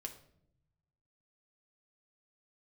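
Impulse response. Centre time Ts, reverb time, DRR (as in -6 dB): 11 ms, 0.70 s, 3.0 dB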